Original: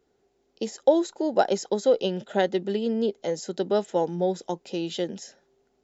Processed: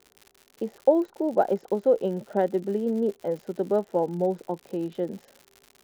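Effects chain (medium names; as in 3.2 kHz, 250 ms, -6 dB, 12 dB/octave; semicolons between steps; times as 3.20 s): low-pass 1.1 kHz 12 dB/octave; crackle 140 per s -37 dBFS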